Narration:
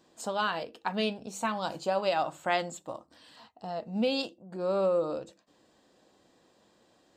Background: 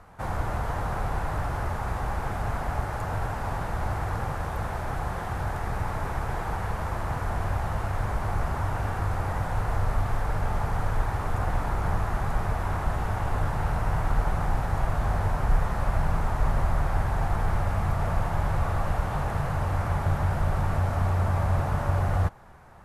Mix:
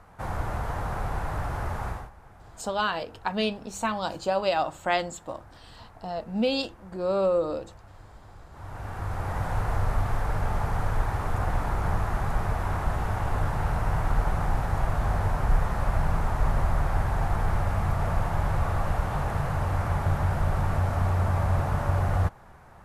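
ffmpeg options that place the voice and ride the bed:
-filter_complex "[0:a]adelay=2400,volume=3dB[a];[1:a]volume=19.5dB,afade=t=out:st=1.86:d=0.24:silence=0.105925,afade=t=in:st=8.5:d=0.99:silence=0.0891251[b];[a][b]amix=inputs=2:normalize=0"

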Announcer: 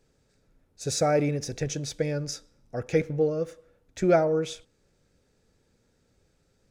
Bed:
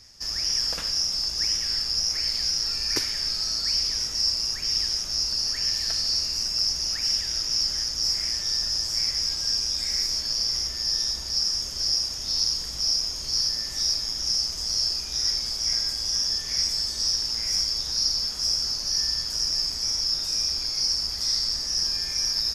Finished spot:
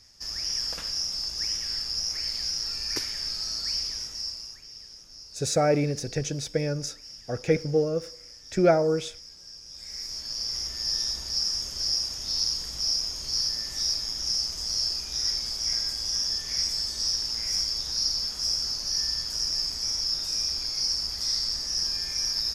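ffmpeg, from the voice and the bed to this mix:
-filter_complex "[0:a]adelay=4550,volume=1dB[a];[1:a]volume=13dB,afade=t=out:st=3.71:d=0.97:silence=0.16788,afade=t=in:st=9.64:d=1.26:silence=0.133352[b];[a][b]amix=inputs=2:normalize=0"

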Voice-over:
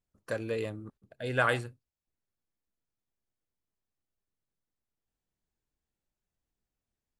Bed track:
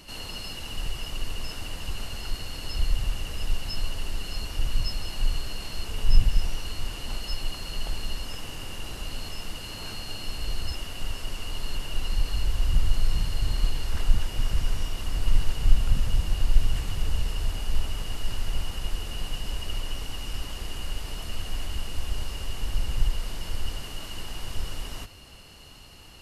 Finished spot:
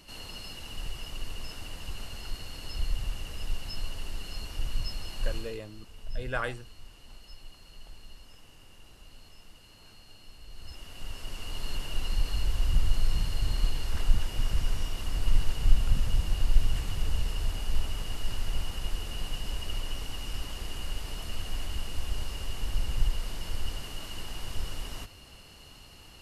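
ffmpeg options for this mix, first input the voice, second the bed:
-filter_complex "[0:a]adelay=4950,volume=-5.5dB[a];[1:a]volume=9.5dB,afade=t=out:st=5.36:d=0.25:silence=0.251189,afade=t=in:st=10.5:d=1.21:silence=0.177828[b];[a][b]amix=inputs=2:normalize=0"

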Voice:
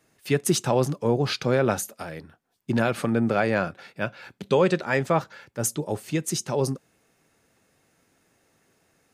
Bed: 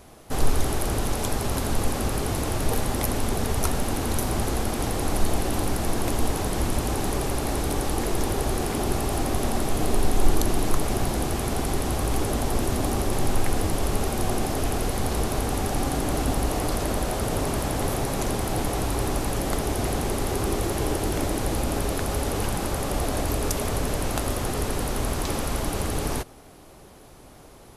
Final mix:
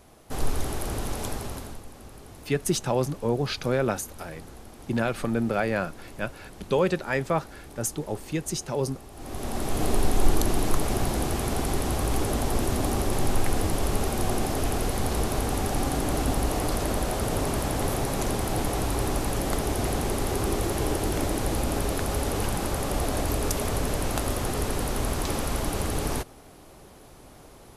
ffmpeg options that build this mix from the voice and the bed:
-filter_complex "[0:a]adelay=2200,volume=-3dB[a];[1:a]volume=13.5dB,afade=t=out:st=1.27:d=0.55:silence=0.188365,afade=t=in:st=9.15:d=0.7:silence=0.11885[b];[a][b]amix=inputs=2:normalize=0"

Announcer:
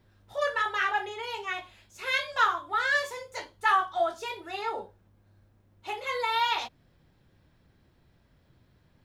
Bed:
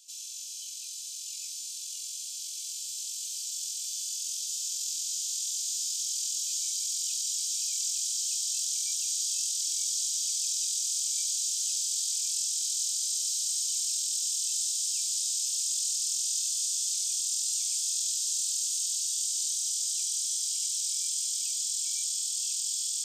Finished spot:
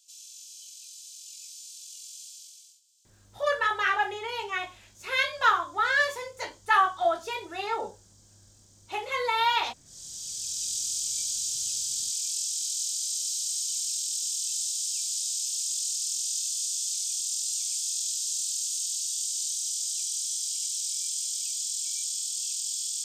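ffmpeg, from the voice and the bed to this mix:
-filter_complex "[0:a]adelay=3050,volume=2dB[a];[1:a]volume=23dB,afade=t=out:st=2.23:d=0.58:silence=0.0668344,afade=t=in:st=9.85:d=0.9:silence=0.0354813[b];[a][b]amix=inputs=2:normalize=0"

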